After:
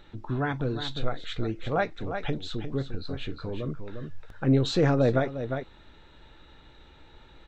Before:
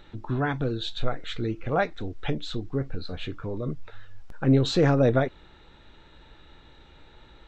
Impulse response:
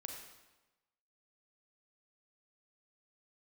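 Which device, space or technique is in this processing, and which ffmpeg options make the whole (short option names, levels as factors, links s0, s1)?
ducked delay: -filter_complex "[0:a]asplit=3[s0][s1][s2];[s1]adelay=353,volume=0.531[s3];[s2]apad=whole_len=345389[s4];[s3][s4]sidechaincompress=threshold=0.0316:ratio=8:attack=50:release=390[s5];[s0][s5]amix=inputs=2:normalize=0,volume=0.794"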